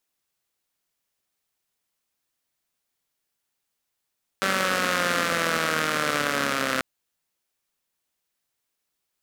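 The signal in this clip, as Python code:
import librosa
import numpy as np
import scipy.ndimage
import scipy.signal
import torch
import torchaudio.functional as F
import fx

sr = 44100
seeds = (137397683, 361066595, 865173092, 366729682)

y = fx.engine_four_rev(sr, seeds[0], length_s=2.39, rpm=5800, resonances_hz=(260.0, 530.0, 1300.0), end_rpm=3900)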